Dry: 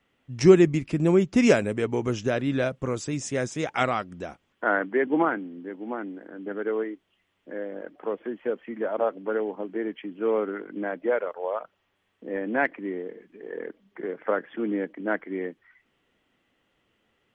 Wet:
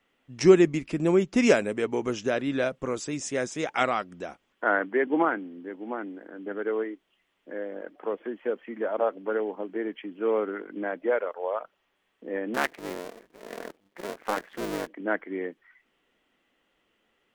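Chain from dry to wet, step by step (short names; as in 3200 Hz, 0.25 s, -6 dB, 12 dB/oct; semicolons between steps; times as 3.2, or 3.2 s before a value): 12.54–14.87 cycle switcher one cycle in 2, muted; bell 100 Hz -12 dB 1.4 oct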